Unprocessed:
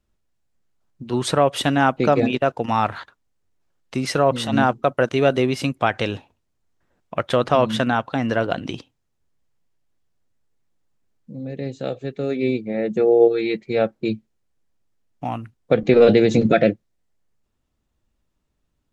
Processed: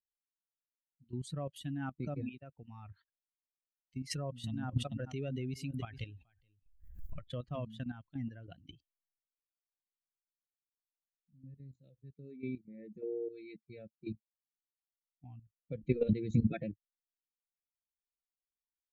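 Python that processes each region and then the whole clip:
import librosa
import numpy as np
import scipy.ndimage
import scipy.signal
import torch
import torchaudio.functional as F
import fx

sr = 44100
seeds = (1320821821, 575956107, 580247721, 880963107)

y = fx.chain(x, sr, fx.echo_single(ms=425, db=-15.0),
    fx.pre_swell(db_per_s=48.0), at=(4.11, 7.21))
y = fx.chain(y, sr, fx.low_shelf(hz=69.0, db=6.5),
    fx.hum_notches(base_hz=60, count=6), at=(11.33, 12.11))
y = fx.bin_expand(y, sr, power=2.0)
y = fx.tone_stack(y, sr, knobs='10-0-1')
y = fx.level_steps(y, sr, step_db=12)
y = y * 10.0 ** (10.5 / 20.0)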